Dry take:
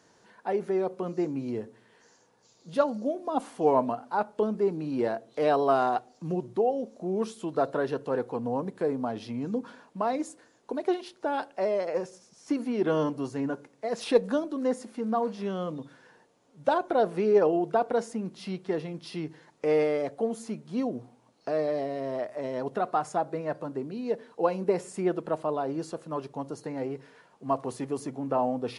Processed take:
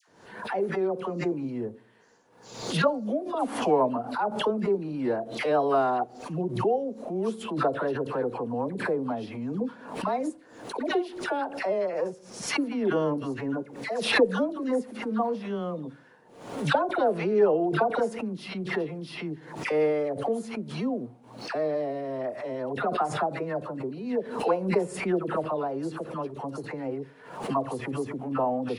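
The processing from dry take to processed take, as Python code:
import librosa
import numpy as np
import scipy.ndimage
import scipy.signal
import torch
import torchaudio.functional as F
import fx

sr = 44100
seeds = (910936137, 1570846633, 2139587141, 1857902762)

y = fx.peak_eq(x, sr, hz=6300.0, db=-7.5, octaves=1.4)
y = fx.dispersion(y, sr, late='lows', ms=82.0, hz=1100.0)
y = fx.pre_swell(y, sr, db_per_s=78.0)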